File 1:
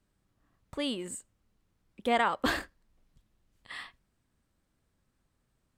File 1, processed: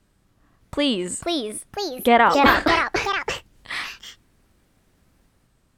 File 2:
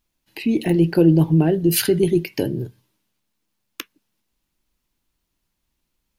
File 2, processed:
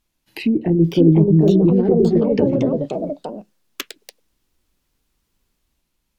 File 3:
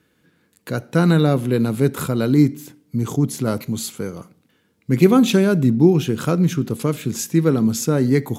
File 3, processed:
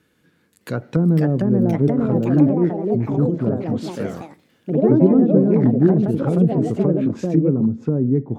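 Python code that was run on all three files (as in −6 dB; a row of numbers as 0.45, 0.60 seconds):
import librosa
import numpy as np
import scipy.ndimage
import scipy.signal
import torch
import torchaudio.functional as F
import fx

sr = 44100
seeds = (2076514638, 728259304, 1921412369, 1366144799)

y = fx.env_lowpass_down(x, sr, base_hz=410.0, full_db=-15.5)
y = fx.echo_pitch(y, sr, ms=610, semitones=3, count=3, db_per_echo=-3.0)
y = librosa.util.normalize(y) * 10.0 ** (-1.5 / 20.0)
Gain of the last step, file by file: +12.0, +2.5, −0.5 decibels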